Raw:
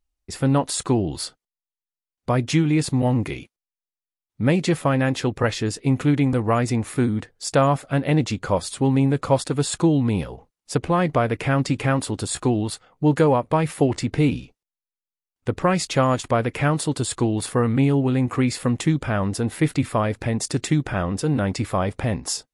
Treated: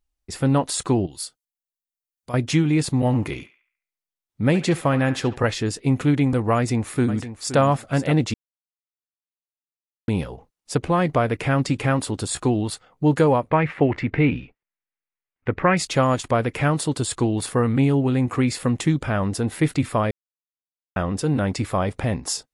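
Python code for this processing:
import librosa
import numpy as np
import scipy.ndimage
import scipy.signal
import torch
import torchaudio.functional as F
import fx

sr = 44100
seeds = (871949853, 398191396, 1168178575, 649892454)

y = fx.pre_emphasis(x, sr, coefficient=0.8, at=(1.06, 2.34))
y = fx.echo_banded(y, sr, ms=70, feedback_pct=47, hz=1600.0, wet_db=-12.0, at=(2.98, 5.37))
y = fx.echo_throw(y, sr, start_s=6.56, length_s=1.04, ms=520, feedback_pct=15, wet_db=-12.0)
y = fx.lowpass_res(y, sr, hz=2100.0, q=2.4, at=(13.5, 15.77))
y = fx.edit(y, sr, fx.silence(start_s=8.34, length_s=1.74),
    fx.silence(start_s=20.11, length_s=0.85), tone=tone)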